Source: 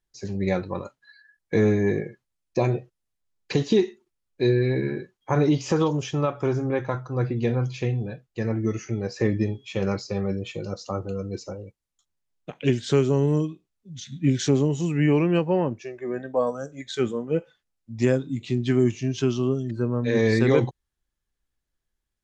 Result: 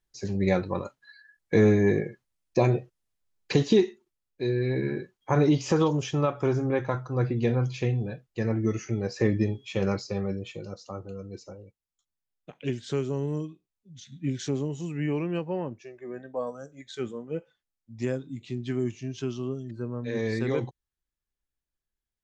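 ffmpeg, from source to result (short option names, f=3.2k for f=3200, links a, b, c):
-af "volume=7dB,afade=t=out:st=3.61:d=0.84:silence=0.398107,afade=t=in:st=4.45:d=0.52:silence=0.473151,afade=t=out:st=9.84:d=0.98:silence=0.421697"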